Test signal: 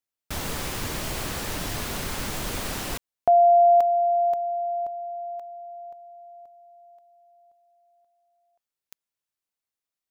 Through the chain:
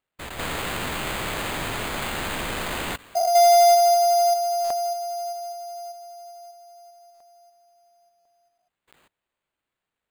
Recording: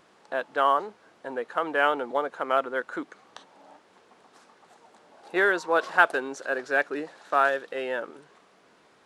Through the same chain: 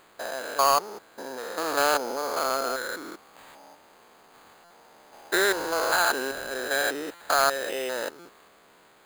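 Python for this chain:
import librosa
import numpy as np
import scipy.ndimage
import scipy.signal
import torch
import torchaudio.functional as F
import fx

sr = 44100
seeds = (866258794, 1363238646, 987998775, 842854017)

y = fx.spec_steps(x, sr, hold_ms=200)
y = fx.low_shelf(y, sr, hz=410.0, db=-6.5)
y = fx.sample_hold(y, sr, seeds[0], rate_hz=5600.0, jitter_pct=0)
y = 10.0 ** (-15.0 / 20.0) * np.tanh(y / 10.0 ** (-15.0 / 20.0))
y = fx.buffer_glitch(y, sr, at_s=(4.64, 7.14, 8.19), block=256, repeats=10)
y = y * 10.0 ** (5.5 / 20.0)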